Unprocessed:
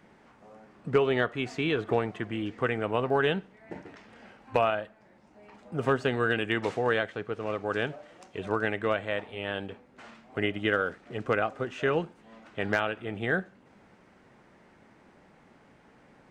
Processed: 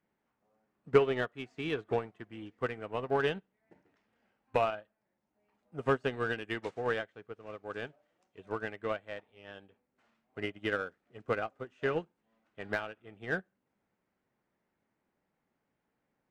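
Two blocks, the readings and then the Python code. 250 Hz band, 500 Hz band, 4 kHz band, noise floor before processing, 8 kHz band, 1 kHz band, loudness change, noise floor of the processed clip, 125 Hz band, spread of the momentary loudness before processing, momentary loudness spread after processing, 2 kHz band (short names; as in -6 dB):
-8.0 dB, -5.0 dB, -8.0 dB, -59 dBFS, n/a, -6.0 dB, -5.0 dB, -83 dBFS, -7.5 dB, 16 LU, 16 LU, -7.0 dB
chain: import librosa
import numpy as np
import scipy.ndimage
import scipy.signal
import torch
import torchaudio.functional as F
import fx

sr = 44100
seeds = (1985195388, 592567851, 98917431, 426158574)

p1 = 10.0 ** (-28.0 / 20.0) * np.tanh(x / 10.0 ** (-28.0 / 20.0))
p2 = x + (p1 * 10.0 ** (-3.5 / 20.0))
y = fx.upward_expand(p2, sr, threshold_db=-36.0, expansion=2.5)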